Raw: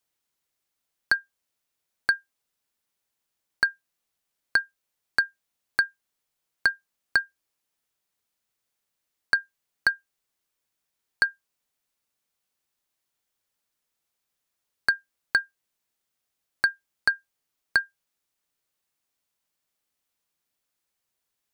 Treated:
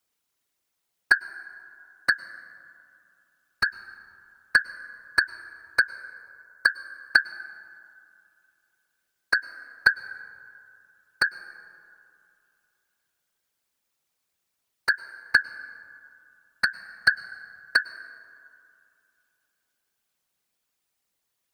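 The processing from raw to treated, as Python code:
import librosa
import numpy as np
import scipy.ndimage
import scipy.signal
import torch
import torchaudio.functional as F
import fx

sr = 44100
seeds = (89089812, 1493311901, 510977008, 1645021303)

y = fx.whisperise(x, sr, seeds[0])
y = fx.fixed_phaser(y, sr, hz=500.0, stages=8, at=(5.82, 6.66))
y = fx.rev_plate(y, sr, seeds[1], rt60_s=2.6, hf_ratio=0.4, predelay_ms=90, drr_db=15.5)
y = y * librosa.db_to_amplitude(2.5)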